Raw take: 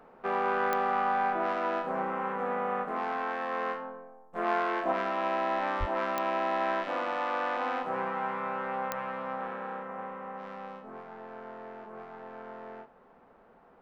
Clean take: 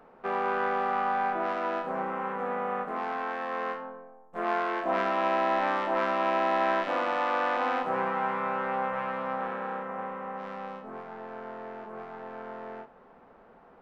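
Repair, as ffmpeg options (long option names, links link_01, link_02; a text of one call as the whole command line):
ffmpeg -i in.wav -filter_complex "[0:a]adeclick=threshold=4,asplit=3[link_01][link_02][link_03];[link_01]afade=type=out:start_time=5.79:duration=0.02[link_04];[link_02]highpass=frequency=140:width=0.5412,highpass=frequency=140:width=1.3066,afade=type=in:start_time=5.79:duration=0.02,afade=type=out:start_time=5.91:duration=0.02[link_05];[link_03]afade=type=in:start_time=5.91:duration=0.02[link_06];[link_04][link_05][link_06]amix=inputs=3:normalize=0,asetnsamples=nb_out_samples=441:pad=0,asendcmd='4.92 volume volume 3.5dB',volume=0dB" out.wav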